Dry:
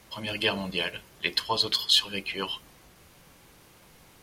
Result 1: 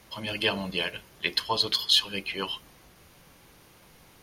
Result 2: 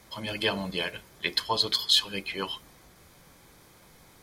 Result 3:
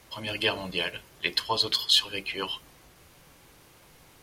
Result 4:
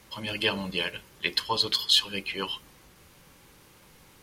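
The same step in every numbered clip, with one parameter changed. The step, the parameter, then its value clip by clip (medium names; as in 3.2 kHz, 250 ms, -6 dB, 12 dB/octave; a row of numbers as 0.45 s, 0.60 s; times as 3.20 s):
band-stop, frequency: 7.7 kHz, 2.8 kHz, 200 Hz, 680 Hz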